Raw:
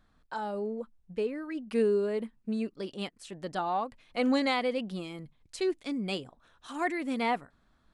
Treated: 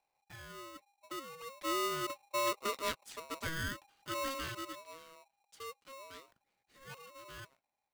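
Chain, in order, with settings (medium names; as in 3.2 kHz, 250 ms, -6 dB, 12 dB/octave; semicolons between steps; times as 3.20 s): Doppler pass-by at 2.71 s, 20 m/s, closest 6.9 m; polarity switched at an audio rate 810 Hz; trim +1 dB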